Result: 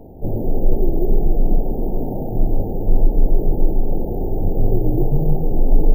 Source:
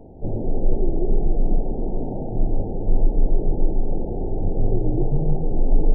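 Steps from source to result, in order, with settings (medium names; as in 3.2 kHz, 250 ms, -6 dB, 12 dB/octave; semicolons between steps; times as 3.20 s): careless resampling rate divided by 3×, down none, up hold; trim +3.5 dB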